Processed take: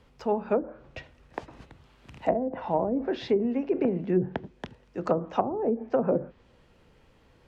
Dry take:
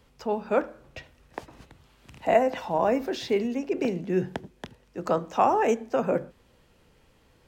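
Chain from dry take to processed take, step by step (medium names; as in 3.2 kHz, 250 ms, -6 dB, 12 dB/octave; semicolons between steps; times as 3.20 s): low-pass that closes with the level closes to 320 Hz, closed at -18.5 dBFS; treble shelf 6.1 kHz -12 dB; trim +1.5 dB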